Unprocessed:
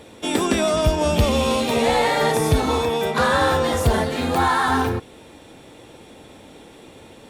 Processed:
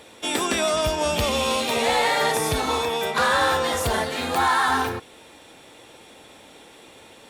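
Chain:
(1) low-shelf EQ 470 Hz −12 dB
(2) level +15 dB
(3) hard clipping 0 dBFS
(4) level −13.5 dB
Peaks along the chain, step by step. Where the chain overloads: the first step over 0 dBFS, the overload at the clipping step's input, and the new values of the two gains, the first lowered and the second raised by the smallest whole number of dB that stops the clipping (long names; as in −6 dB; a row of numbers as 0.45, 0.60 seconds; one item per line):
−10.0, +5.0, 0.0, −13.5 dBFS
step 2, 5.0 dB
step 2 +10 dB, step 4 −8.5 dB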